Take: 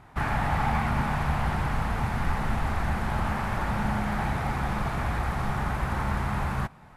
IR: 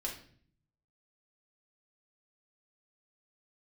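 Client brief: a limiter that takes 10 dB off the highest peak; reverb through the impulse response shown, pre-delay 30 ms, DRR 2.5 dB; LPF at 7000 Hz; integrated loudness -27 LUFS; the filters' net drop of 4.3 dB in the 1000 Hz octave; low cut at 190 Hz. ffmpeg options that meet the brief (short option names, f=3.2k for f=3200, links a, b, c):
-filter_complex "[0:a]highpass=190,lowpass=7k,equalizer=f=1k:t=o:g=-5.5,alimiter=level_in=4.5dB:limit=-24dB:level=0:latency=1,volume=-4.5dB,asplit=2[a][b];[1:a]atrim=start_sample=2205,adelay=30[c];[b][c]afir=irnorm=-1:irlink=0,volume=-3.5dB[d];[a][d]amix=inputs=2:normalize=0,volume=8dB"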